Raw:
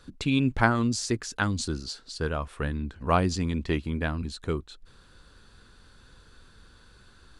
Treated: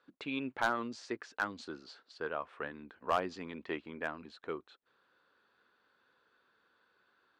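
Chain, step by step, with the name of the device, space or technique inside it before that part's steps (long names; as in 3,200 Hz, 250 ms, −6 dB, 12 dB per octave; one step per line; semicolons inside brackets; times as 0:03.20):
walkie-talkie (band-pass filter 440–2,400 Hz; hard clipping −16.5 dBFS, distortion −11 dB; noise gate −55 dBFS, range −6 dB)
level −4.5 dB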